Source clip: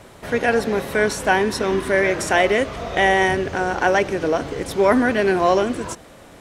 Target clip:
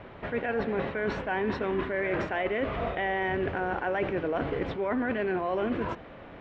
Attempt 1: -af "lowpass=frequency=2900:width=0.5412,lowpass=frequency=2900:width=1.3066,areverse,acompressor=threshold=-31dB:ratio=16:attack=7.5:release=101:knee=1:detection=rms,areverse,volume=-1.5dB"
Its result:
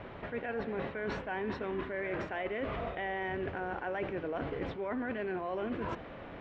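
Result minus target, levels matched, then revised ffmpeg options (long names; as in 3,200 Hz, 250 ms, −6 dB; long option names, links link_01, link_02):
downward compressor: peak gain reduction +7 dB
-af "lowpass=frequency=2900:width=0.5412,lowpass=frequency=2900:width=1.3066,areverse,acompressor=threshold=-23.5dB:ratio=16:attack=7.5:release=101:knee=1:detection=rms,areverse,volume=-1.5dB"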